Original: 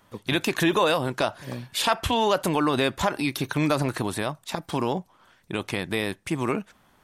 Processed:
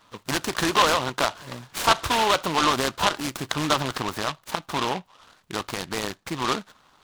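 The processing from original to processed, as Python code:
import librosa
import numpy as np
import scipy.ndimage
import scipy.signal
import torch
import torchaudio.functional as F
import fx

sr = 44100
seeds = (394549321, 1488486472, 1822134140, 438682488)

y = fx.peak_eq(x, sr, hz=1200.0, db=13.0, octaves=1.2)
y = fx.noise_mod_delay(y, sr, seeds[0], noise_hz=2100.0, depth_ms=0.1)
y = F.gain(torch.from_numpy(y), -5.0).numpy()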